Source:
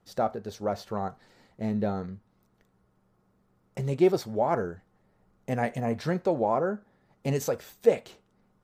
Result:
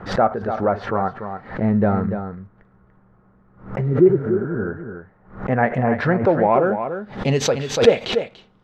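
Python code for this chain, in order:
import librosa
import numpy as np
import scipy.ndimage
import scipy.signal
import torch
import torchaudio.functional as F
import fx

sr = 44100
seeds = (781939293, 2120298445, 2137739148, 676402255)

p1 = fx.low_shelf(x, sr, hz=140.0, db=6.5, at=(1.62, 3.78))
p2 = 10.0 ** (-19.0 / 20.0) * np.tanh(p1 / 10.0 ** (-19.0 / 20.0))
p3 = p1 + (p2 * 10.0 ** (-9.0 / 20.0))
p4 = fx.spec_repair(p3, sr, seeds[0], start_s=3.9, length_s=0.74, low_hz=410.0, high_hz=11000.0, source='both')
p5 = fx.filter_sweep_lowpass(p4, sr, from_hz=1600.0, to_hz=3500.0, start_s=6.19, end_s=6.8, q=1.8)
p6 = p5 + fx.echo_single(p5, sr, ms=290, db=-8.5, dry=0)
p7 = fx.pre_swell(p6, sr, db_per_s=130.0)
y = p7 * 10.0 ** (6.0 / 20.0)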